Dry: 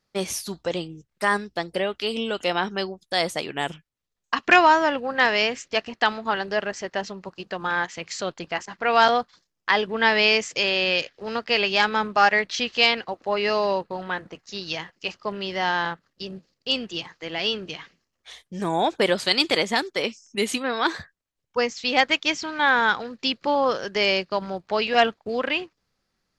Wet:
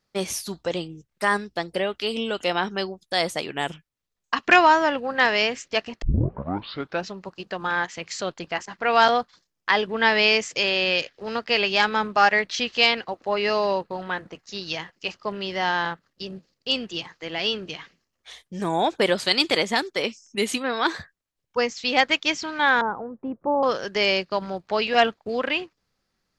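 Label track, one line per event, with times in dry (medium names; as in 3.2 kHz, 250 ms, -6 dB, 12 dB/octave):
6.020000	6.020000	tape start 1.09 s
22.810000	23.630000	low-pass 1 kHz 24 dB/octave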